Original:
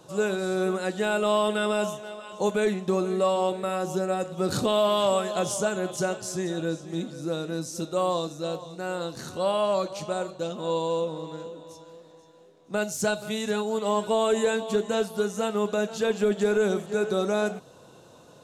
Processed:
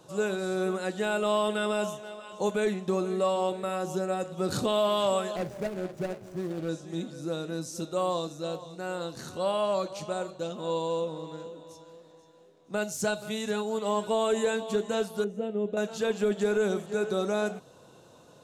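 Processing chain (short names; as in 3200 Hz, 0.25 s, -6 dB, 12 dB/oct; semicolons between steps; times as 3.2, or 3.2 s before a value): 5.36–6.69 median filter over 41 samples; 15.24–15.77 EQ curve 540 Hz 0 dB, 1100 Hz -18 dB, 1800 Hz -12 dB, 3100 Hz -11 dB, 5000 Hz -23 dB; gain -3 dB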